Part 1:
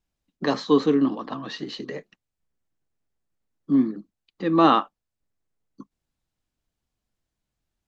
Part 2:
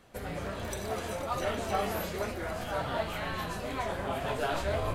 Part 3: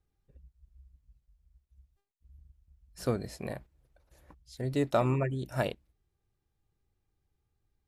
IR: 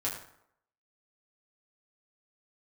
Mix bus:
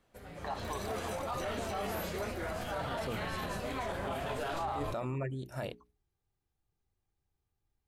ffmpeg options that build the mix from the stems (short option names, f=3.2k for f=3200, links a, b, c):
-filter_complex "[0:a]highpass=f=790:t=q:w=6.9,volume=-17.5dB[a];[1:a]dynaudnorm=f=350:g=3:m=11.5dB,volume=-13dB[b];[2:a]bandreject=f=60:t=h:w=6,bandreject=f=120:t=h:w=6,bandreject=f=180:t=h:w=6,bandreject=f=240:t=h:w=6,bandreject=f=300:t=h:w=6,bandreject=f=360:t=h:w=6,bandreject=f=420:t=h:w=6,volume=-4.5dB[c];[a][b][c]amix=inputs=3:normalize=0,alimiter=level_in=4dB:limit=-24dB:level=0:latency=1:release=24,volume=-4dB"